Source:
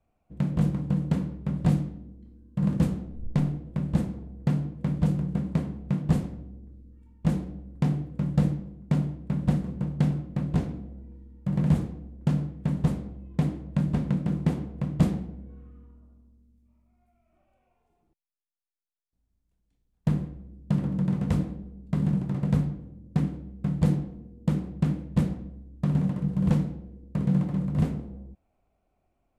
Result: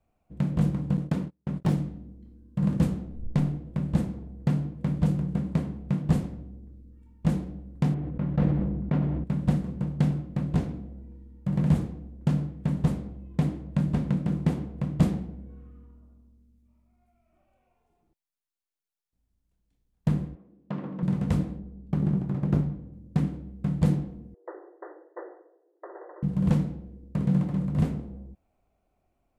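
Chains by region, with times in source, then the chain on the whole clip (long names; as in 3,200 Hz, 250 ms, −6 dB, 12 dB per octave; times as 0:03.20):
0:00.97–0:01.78: phase distortion by the signal itself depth 0.37 ms + low-shelf EQ 75 Hz −10.5 dB + noise gate −34 dBFS, range −34 dB
0:07.94–0:09.24: low-pass filter 2,400 Hz + dynamic equaliser 150 Hz, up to −4 dB, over −33 dBFS, Q 0.72 + level that may fall only so fast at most 25 dB per second
0:20.35–0:21.03: band-pass filter 280–2,800 Hz + parametric band 1,100 Hz +6 dB 0.2 octaves
0:21.59–0:22.93: phase distortion by the signal itself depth 0.56 ms + high-shelf EQ 2,200 Hz −7.5 dB
0:24.34–0:26.23: upward compression, threshold −41 dBFS + linear-phase brick-wall band-pass 330–2,000 Hz + high-frequency loss of the air 310 metres
whole clip: no processing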